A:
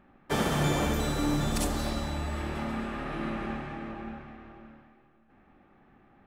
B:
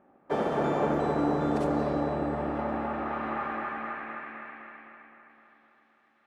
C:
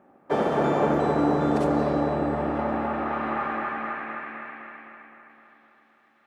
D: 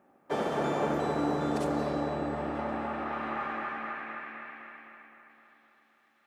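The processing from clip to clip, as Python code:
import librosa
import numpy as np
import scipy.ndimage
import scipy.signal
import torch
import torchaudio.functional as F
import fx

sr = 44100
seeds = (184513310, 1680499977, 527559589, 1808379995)

y1 = fx.echo_bbd(x, sr, ms=258, stages=4096, feedback_pct=75, wet_db=-3.0)
y1 = fx.filter_sweep_bandpass(y1, sr, from_hz=560.0, to_hz=5300.0, start_s=2.37, end_s=6.01, q=1.1)
y1 = y1 * librosa.db_to_amplitude(4.0)
y2 = scipy.signal.sosfilt(scipy.signal.butter(2, 57.0, 'highpass', fs=sr, output='sos'), y1)
y2 = y2 * librosa.db_to_amplitude(4.5)
y3 = fx.high_shelf(y2, sr, hz=2800.0, db=10.0)
y3 = y3 * librosa.db_to_amplitude(-7.5)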